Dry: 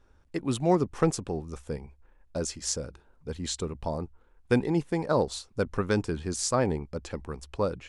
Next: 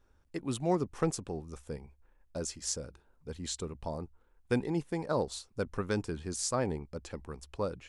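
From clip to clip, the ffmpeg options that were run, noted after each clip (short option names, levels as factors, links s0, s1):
-af "highshelf=f=8700:g=6,volume=0.501"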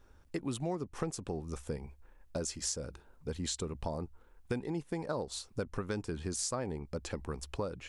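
-af "acompressor=threshold=0.01:ratio=5,volume=2.11"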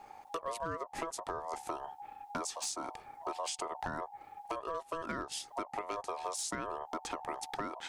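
-af "acompressor=threshold=0.00562:ratio=3,aeval=exprs='val(0)*sin(2*PI*820*n/s)':c=same,asoftclip=type=hard:threshold=0.0133,volume=3.16"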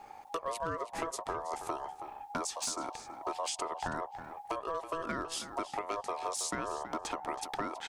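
-filter_complex "[0:a]asplit=2[s0][s1];[s1]adelay=324,lowpass=f=4300:p=1,volume=0.282,asplit=2[s2][s3];[s3]adelay=324,lowpass=f=4300:p=1,volume=0.17[s4];[s0][s2][s4]amix=inputs=3:normalize=0,volume=1.26"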